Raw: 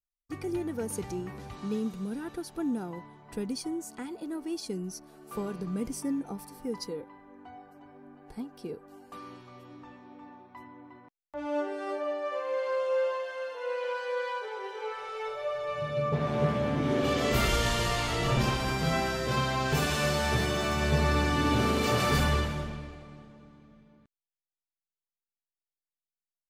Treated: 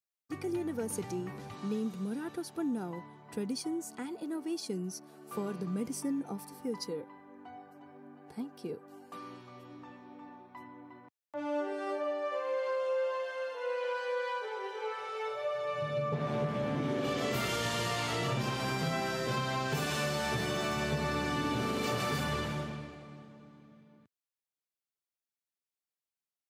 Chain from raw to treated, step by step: HPF 100 Hz 24 dB/oct; compressor, threshold -28 dBFS, peak gain reduction 7 dB; gain -1 dB

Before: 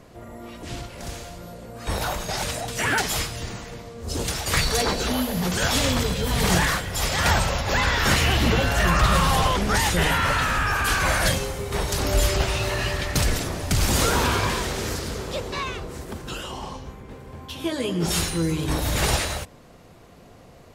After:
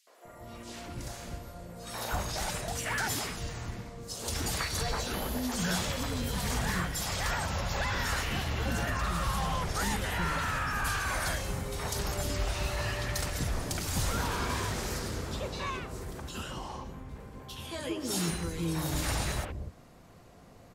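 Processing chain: compressor, threshold -22 dBFS, peak gain reduction 8.5 dB; three bands offset in time highs, mids, lows 70/250 ms, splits 430/3000 Hz; gain -5 dB

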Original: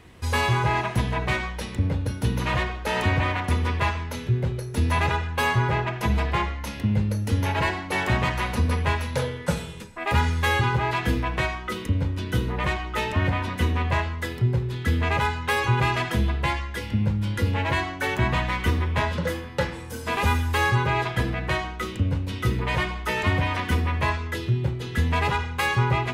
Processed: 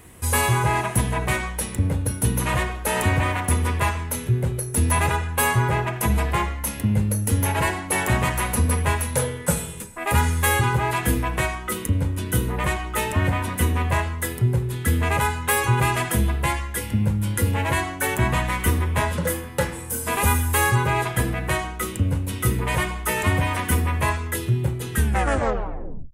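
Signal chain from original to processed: tape stop at the end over 1.22 s; resonant high shelf 6800 Hz +13.5 dB, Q 1.5; gain +2 dB

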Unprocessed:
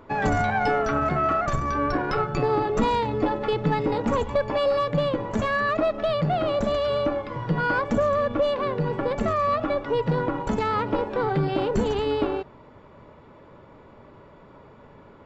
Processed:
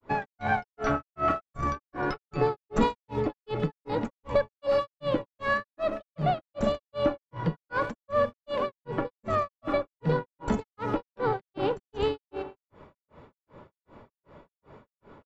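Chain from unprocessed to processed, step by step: speakerphone echo 0.13 s, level -11 dB; grains 0.261 s, grains 2.6/s, spray 39 ms, pitch spread up and down by 0 st

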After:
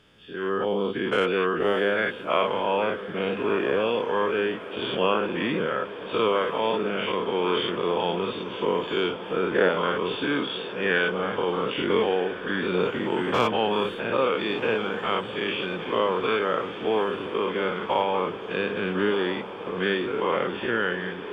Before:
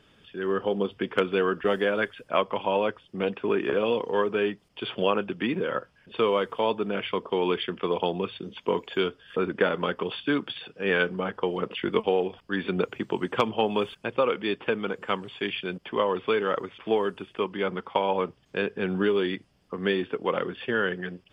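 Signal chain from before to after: spectral dilation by 0.12 s; diffused feedback echo 1.31 s, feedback 76%, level -13.5 dB; gain -3.5 dB

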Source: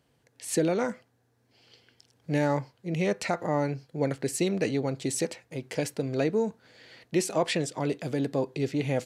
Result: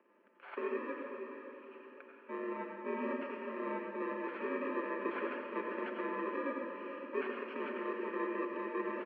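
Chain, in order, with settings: FFT order left unsorted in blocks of 64 samples; comb 6.2 ms, depth 41%; reverse; compressor 6:1, threshold -36 dBFS, peak gain reduction 16 dB; reverse; limiter -30.5 dBFS, peak gain reduction 6.5 dB; vocal rider within 5 dB 0.5 s; on a send at -1.5 dB: reverb RT60 1.1 s, pre-delay 76 ms; on the sum: mistuned SSB +68 Hz 240–2200 Hz; diffused feedback echo 0.486 s, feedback 47%, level -8 dB; gain +8 dB

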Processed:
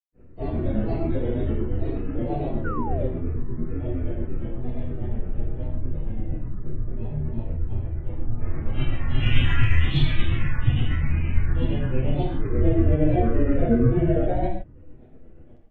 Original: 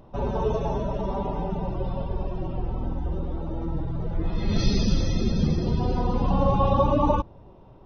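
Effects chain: bell 4700 Hz +9 dB 0.23 oct; grains, grains 17/s, pitch spread up and down by 7 st; reverb, pre-delay 4 ms, DRR -0.5 dB; painted sound fall, 1.32–1.54, 980–3100 Hz -33 dBFS; speed mistake 15 ips tape played at 7.5 ips

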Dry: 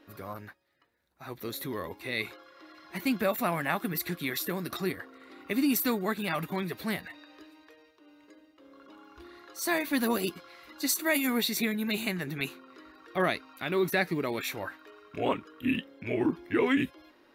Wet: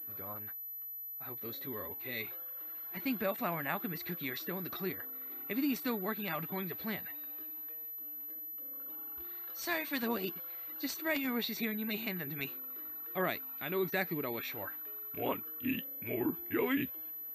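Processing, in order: 1.29–2.97 notch comb 160 Hz; 9.23–10.03 tilt +2 dB/oct; pulse-width modulation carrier 12000 Hz; gain -6.5 dB

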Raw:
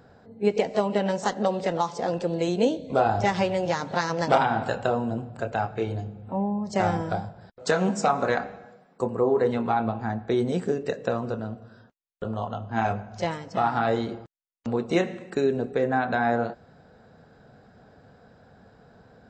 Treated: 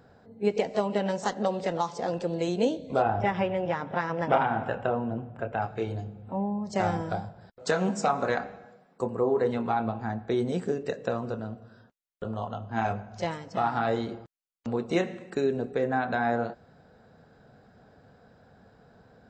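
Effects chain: 3.02–5.62 polynomial smoothing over 25 samples; gain -3 dB

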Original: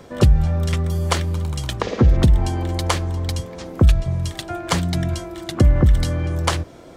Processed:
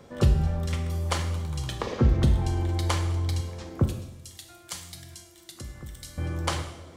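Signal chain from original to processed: 3.84–6.18 pre-emphasis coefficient 0.9; reverb, pre-delay 3 ms, DRR 4 dB; gain -8.5 dB

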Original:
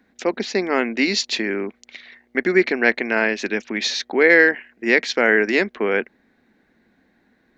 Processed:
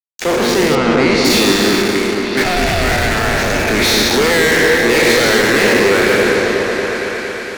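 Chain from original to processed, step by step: spectral trails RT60 2.11 s; fuzz box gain 26 dB, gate -33 dBFS; 0.75–1.25 air absorption 110 m; 2.42–3.66 ring modulator 390 Hz -> 140 Hz; repeats that get brighter 0.23 s, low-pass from 400 Hz, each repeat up 1 oct, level 0 dB; gain +1 dB

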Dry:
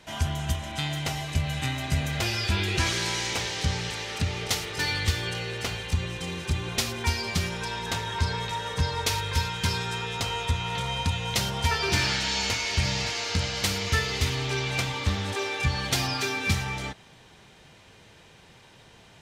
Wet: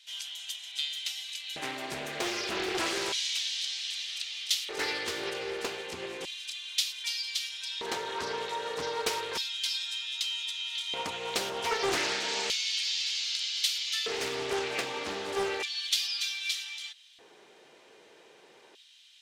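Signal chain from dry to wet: LFO high-pass square 0.32 Hz 390–3400 Hz; Doppler distortion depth 0.41 ms; gain -4.5 dB

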